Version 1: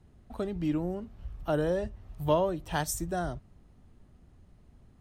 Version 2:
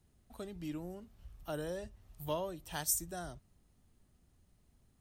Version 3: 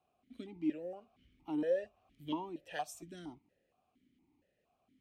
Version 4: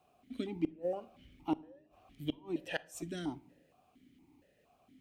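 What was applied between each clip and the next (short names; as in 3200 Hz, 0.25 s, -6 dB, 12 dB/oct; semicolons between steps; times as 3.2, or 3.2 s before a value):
pre-emphasis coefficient 0.8; gain +2 dB
vowel sequencer 4.3 Hz; gain +12 dB
flipped gate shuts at -30 dBFS, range -36 dB; shoebox room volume 850 m³, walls furnished, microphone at 0.31 m; gain +9 dB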